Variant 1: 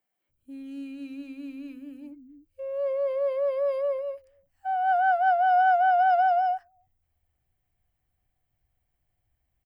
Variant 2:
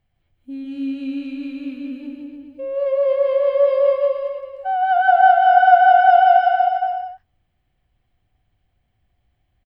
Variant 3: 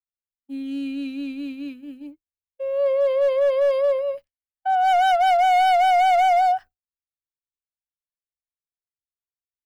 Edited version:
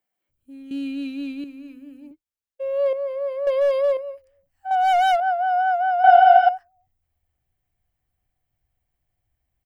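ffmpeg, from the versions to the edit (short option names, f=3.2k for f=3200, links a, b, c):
-filter_complex "[2:a]asplit=4[a][b][c][d];[0:a]asplit=6[e][f][g][h][i][j];[e]atrim=end=0.712[k];[a]atrim=start=0.708:end=1.442[l];[f]atrim=start=1.438:end=2.112[m];[b]atrim=start=2.108:end=2.932[n];[g]atrim=start=2.928:end=3.472[o];[c]atrim=start=3.468:end=3.972[p];[h]atrim=start=3.968:end=4.712[q];[d]atrim=start=4.708:end=5.202[r];[i]atrim=start=5.198:end=6.042[s];[1:a]atrim=start=6.038:end=6.492[t];[j]atrim=start=6.488[u];[k][l]acrossfade=d=0.004:c1=hsin:c2=hsin[v];[v][m]acrossfade=d=0.004:c1=hsin:c2=hsin[w];[w][n]acrossfade=d=0.004:c1=hsin:c2=hsin[x];[x][o]acrossfade=d=0.004:c1=hsin:c2=hsin[y];[y][p]acrossfade=d=0.004:c1=hsin:c2=hsin[z];[z][q]acrossfade=d=0.004:c1=hsin:c2=hsin[aa];[aa][r]acrossfade=d=0.004:c1=hsin:c2=hsin[ab];[ab][s]acrossfade=d=0.004:c1=hsin:c2=hsin[ac];[ac][t]acrossfade=d=0.004:c1=hsin:c2=hsin[ad];[ad][u]acrossfade=d=0.004:c1=hsin:c2=hsin"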